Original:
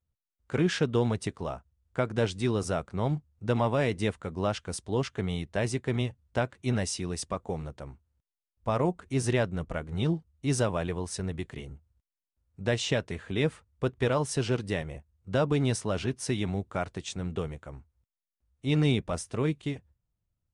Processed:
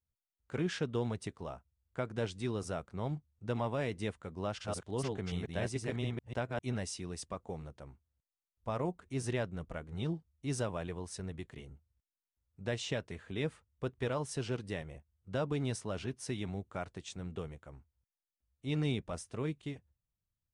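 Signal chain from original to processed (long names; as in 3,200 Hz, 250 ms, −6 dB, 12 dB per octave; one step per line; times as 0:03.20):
0:04.45–0:06.59: delay that plays each chunk backwards 145 ms, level −1.5 dB
level −8.5 dB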